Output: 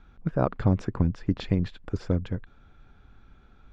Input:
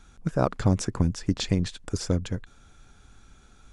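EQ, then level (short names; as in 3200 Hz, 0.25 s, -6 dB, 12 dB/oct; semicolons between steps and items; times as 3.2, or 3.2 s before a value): dynamic EQ 7200 Hz, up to +7 dB, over -57 dBFS, Q 6.9; air absorption 340 m; 0.0 dB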